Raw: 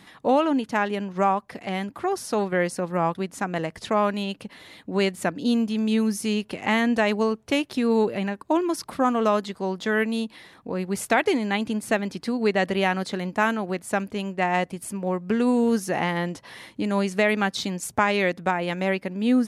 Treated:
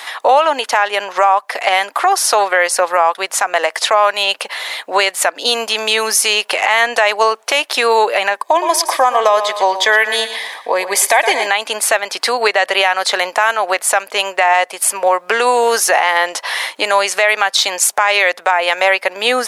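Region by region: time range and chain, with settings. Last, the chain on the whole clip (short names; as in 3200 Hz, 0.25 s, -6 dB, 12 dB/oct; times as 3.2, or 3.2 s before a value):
8.37–11.47 notch 1400 Hz, Q 10 + notch comb 1400 Hz + feedback echo 0.115 s, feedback 34%, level -13 dB
whole clip: HPF 620 Hz 24 dB/oct; compressor 2.5:1, threshold -33 dBFS; maximiser +24 dB; gain -1 dB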